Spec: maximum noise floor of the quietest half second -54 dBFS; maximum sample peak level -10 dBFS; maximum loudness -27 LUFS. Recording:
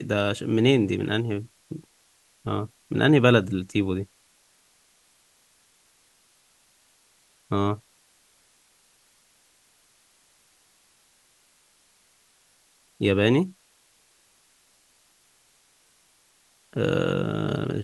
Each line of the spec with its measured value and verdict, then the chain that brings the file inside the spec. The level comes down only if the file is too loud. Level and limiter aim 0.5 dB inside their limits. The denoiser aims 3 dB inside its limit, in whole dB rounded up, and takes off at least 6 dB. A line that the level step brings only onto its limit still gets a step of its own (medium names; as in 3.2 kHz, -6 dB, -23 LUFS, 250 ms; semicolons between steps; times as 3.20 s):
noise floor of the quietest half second -63 dBFS: pass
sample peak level -4.5 dBFS: fail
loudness -24.0 LUFS: fail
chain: trim -3.5 dB; peak limiter -10.5 dBFS